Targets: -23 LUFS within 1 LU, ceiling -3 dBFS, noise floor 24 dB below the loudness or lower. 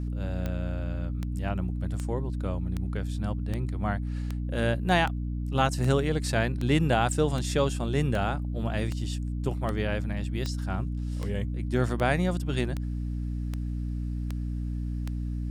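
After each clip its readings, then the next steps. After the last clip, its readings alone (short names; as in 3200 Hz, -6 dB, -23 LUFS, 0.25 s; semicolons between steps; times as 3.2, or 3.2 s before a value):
clicks 20; hum 60 Hz; harmonics up to 300 Hz; hum level -29 dBFS; loudness -29.5 LUFS; peak -10.5 dBFS; loudness target -23.0 LUFS
-> de-click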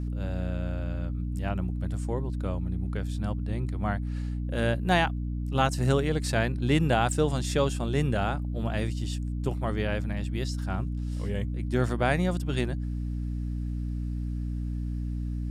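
clicks 0; hum 60 Hz; harmonics up to 300 Hz; hum level -29 dBFS
-> notches 60/120/180/240/300 Hz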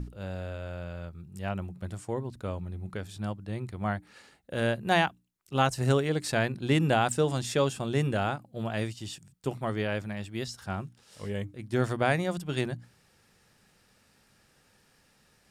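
hum none; loudness -30.5 LUFS; peak -11.0 dBFS; loudness target -23.0 LUFS
-> gain +7.5 dB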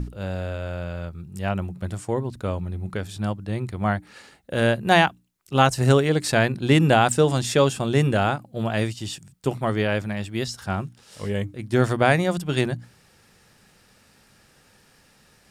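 loudness -23.0 LUFS; peak -3.5 dBFS; noise floor -58 dBFS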